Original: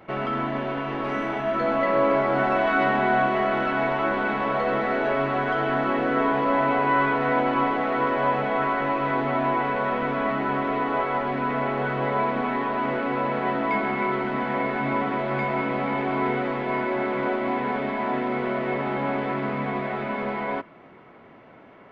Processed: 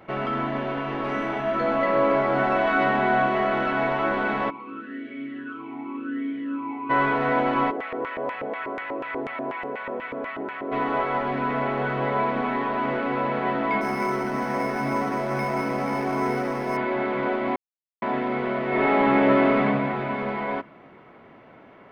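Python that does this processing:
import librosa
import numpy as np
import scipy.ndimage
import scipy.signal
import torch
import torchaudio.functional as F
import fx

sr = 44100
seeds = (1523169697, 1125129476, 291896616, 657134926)

y = fx.vowel_sweep(x, sr, vowels='i-u', hz=fx.line((4.49, 0.57), (6.89, 1.3)), at=(4.49, 6.89), fade=0.02)
y = fx.filter_lfo_bandpass(y, sr, shape='square', hz=4.1, low_hz=420.0, high_hz=2200.0, q=1.6, at=(7.7, 10.71), fade=0.02)
y = fx.resample_linear(y, sr, factor=6, at=(13.81, 16.77))
y = fx.reverb_throw(y, sr, start_s=18.69, length_s=0.93, rt60_s=1.6, drr_db=-6.0)
y = fx.edit(y, sr, fx.silence(start_s=17.56, length_s=0.46), tone=tone)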